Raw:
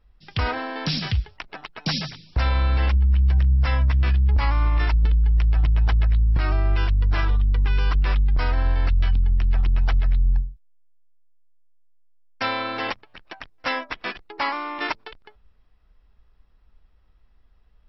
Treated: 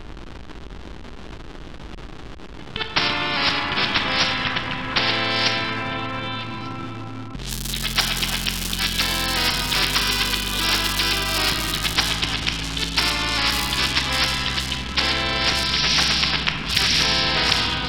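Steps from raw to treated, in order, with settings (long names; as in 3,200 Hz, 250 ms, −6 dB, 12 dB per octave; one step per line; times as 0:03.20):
played backwards from end to start
in parallel at −1 dB: downward compressor, threshold −30 dBFS, peak gain reduction 14 dB
on the sum: drawn EQ curve 170 Hz 0 dB, 320 Hz −18 dB, 3,400 Hz +2 dB
noise gate −38 dBFS, range −31 dB
echo through a band-pass that steps 239 ms, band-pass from 170 Hz, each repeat 1.4 octaves, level −10 dB
on a send at −3 dB: convolution reverb RT60 2.7 s, pre-delay 13 ms
on the sum: upward compression, threshold −29 dBFS
surface crackle 330 per second −31 dBFS
low-pass that shuts in the quiet parts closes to 1,400 Hz, open at −13.5 dBFS
flat-topped bell 1,100 Hz −9 dB 2.6 octaves
every bin compressed towards the loudest bin 10 to 1
level +5 dB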